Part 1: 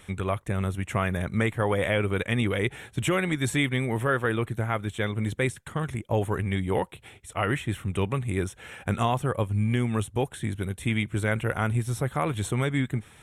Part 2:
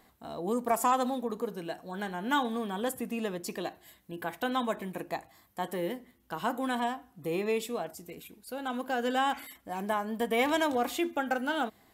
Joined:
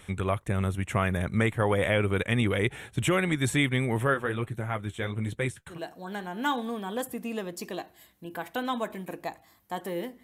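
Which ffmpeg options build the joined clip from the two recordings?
ffmpeg -i cue0.wav -i cue1.wav -filter_complex "[0:a]asplit=3[link_01][link_02][link_03];[link_01]afade=type=out:start_time=4.13:duration=0.02[link_04];[link_02]flanger=delay=5.1:depth=8:regen=-44:speed=1.3:shape=triangular,afade=type=in:start_time=4.13:duration=0.02,afade=type=out:start_time=5.8:duration=0.02[link_05];[link_03]afade=type=in:start_time=5.8:duration=0.02[link_06];[link_04][link_05][link_06]amix=inputs=3:normalize=0,apad=whole_dur=10.23,atrim=end=10.23,atrim=end=5.8,asetpts=PTS-STARTPTS[link_07];[1:a]atrim=start=1.53:end=6.1,asetpts=PTS-STARTPTS[link_08];[link_07][link_08]acrossfade=duration=0.14:curve1=tri:curve2=tri" out.wav

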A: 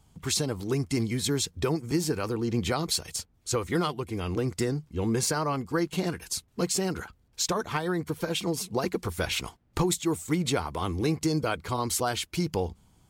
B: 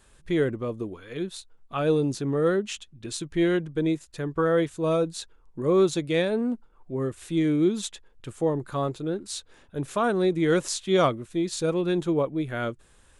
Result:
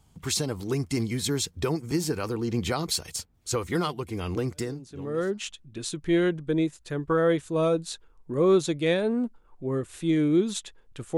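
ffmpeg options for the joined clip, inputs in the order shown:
ffmpeg -i cue0.wav -i cue1.wav -filter_complex "[0:a]apad=whole_dur=11.17,atrim=end=11.17,atrim=end=5.47,asetpts=PTS-STARTPTS[link_01];[1:a]atrim=start=1.71:end=8.45,asetpts=PTS-STARTPTS[link_02];[link_01][link_02]acrossfade=duration=1.04:curve1=qua:curve2=qua" out.wav

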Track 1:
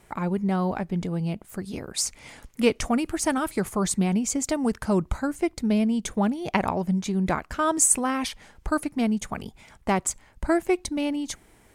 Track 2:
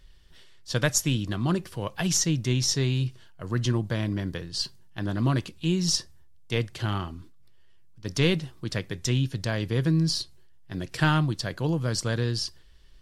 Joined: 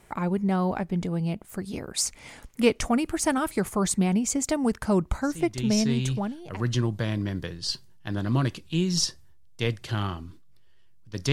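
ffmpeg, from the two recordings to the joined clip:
ffmpeg -i cue0.wav -i cue1.wav -filter_complex "[0:a]apad=whole_dur=11.32,atrim=end=11.32,atrim=end=6.69,asetpts=PTS-STARTPTS[link_01];[1:a]atrim=start=2.12:end=8.23,asetpts=PTS-STARTPTS[link_02];[link_01][link_02]acrossfade=duration=1.48:curve1=qsin:curve2=qsin" out.wav

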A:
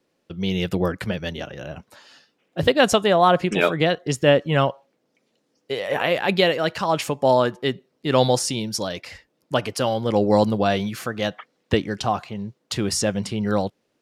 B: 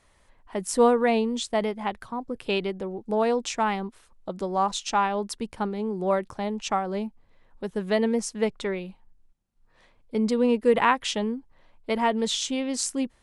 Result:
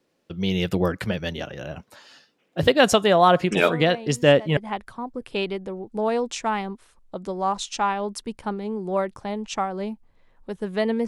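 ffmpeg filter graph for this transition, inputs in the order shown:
ffmpeg -i cue0.wav -i cue1.wav -filter_complex "[1:a]asplit=2[link_01][link_02];[0:a]apad=whole_dur=11.07,atrim=end=11.07,atrim=end=4.572[link_03];[link_02]atrim=start=1.708:end=8.21[link_04];[link_01]atrim=start=0.71:end=1.71,asetpts=PTS-STARTPTS,volume=-14.5dB,afade=type=in:duration=0.004:curve=hsin,afade=type=out:start_time=0.996:duration=0.004:curve=hsin,adelay=157437S[link_05];[link_03][link_04]acrossfade=duration=0.004:curve1=hsin:curve2=hsin[link_06];[link_06][link_05]amix=inputs=2:normalize=0" out.wav

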